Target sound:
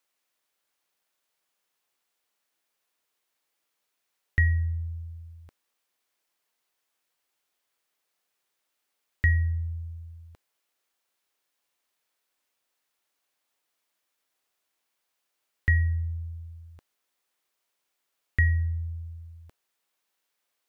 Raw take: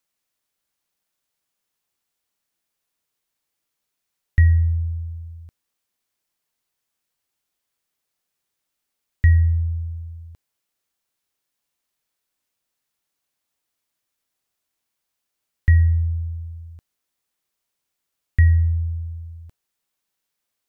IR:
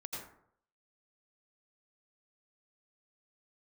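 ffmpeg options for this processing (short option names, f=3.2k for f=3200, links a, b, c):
-af "bass=f=250:g=-12,treble=f=4k:g=-4,volume=3dB"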